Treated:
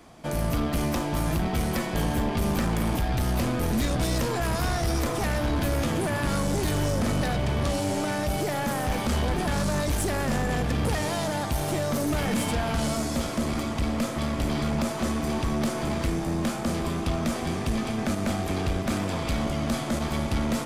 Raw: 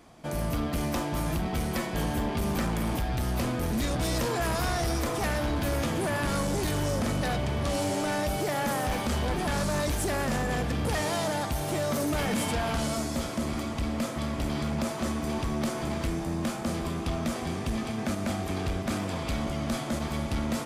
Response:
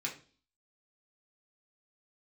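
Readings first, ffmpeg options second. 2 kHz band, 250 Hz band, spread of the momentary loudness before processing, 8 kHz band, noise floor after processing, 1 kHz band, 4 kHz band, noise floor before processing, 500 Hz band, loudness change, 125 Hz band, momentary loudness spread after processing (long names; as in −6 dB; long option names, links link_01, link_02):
+1.5 dB, +3.0 dB, 3 LU, +1.5 dB, −31 dBFS, +1.5 dB, +2.0 dB, −34 dBFS, +2.0 dB, +2.5 dB, +3.5 dB, 2 LU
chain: -filter_complex "[0:a]acrossover=split=280[link_01][link_02];[link_02]acompressor=threshold=-30dB:ratio=6[link_03];[link_01][link_03]amix=inputs=2:normalize=0,aeval=exprs='0.126*(cos(1*acos(clip(val(0)/0.126,-1,1)))-cos(1*PI/2))+0.00562*(cos(6*acos(clip(val(0)/0.126,-1,1)))-cos(6*PI/2))':channel_layout=same,volume=3.5dB"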